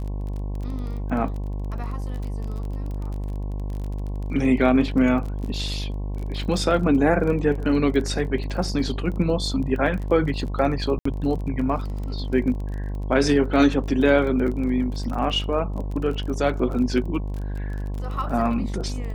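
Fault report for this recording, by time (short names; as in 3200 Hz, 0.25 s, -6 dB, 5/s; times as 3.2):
buzz 50 Hz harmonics 22 -28 dBFS
crackle 26/s -31 dBFS
10.99–11.05 gap 64 ms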